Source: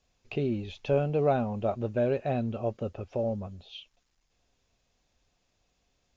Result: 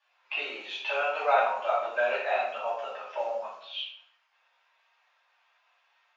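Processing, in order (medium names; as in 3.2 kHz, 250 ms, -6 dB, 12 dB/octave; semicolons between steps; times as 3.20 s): coarse spectral quantiser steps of 15 dB; level-controlled noise filter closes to 2.6 kHz, open at -27.5 dBFS; high-pass 970 Hz 24 dB/octave; treble shelf 3.8 kHz -10.5 dB; reverberation RT60 0.65 s, pre-delay 3 ms, DRR -9 dB; trim +7.5 dB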